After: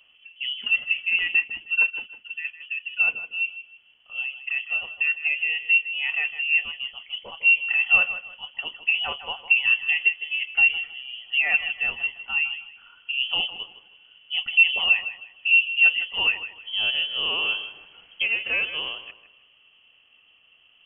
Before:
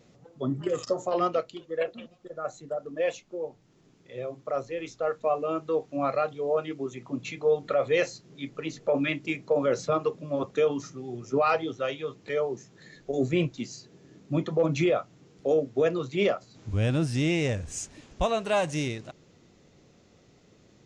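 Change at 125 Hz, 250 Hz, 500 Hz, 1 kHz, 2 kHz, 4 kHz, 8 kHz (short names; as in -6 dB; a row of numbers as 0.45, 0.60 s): under -25 dB, under -20 dB, -21.0 dB, -8.0 dB, +17.5 dB, +16.5 dB, under -35 dB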